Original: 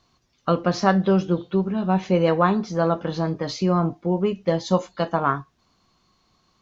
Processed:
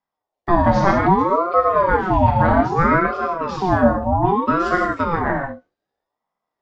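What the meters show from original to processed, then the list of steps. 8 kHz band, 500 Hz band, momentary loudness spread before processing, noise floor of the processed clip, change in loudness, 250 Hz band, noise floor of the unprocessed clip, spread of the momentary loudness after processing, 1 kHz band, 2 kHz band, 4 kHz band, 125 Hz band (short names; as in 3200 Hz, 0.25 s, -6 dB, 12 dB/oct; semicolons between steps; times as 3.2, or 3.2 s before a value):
n/a, +3.0 dB, 6 LU, -85 dBFS, +5.0 dB, +1.5 dB, -66 dBFS, 7 LU, +9.0 dB, +9.5 dB, -5.0 dB, +2.5 dB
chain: block floating point 7-bit; LPF 1400 Hz 6 dB/oct; gate with hold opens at -48 dBFS; rotary speaker horn 1 Hz; non-linear reverb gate 0.19 s flat, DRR -1 dB; ring modulator with a swept carrier 640 Hz, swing 40%, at 0.63 Hz; gain +6.5 dB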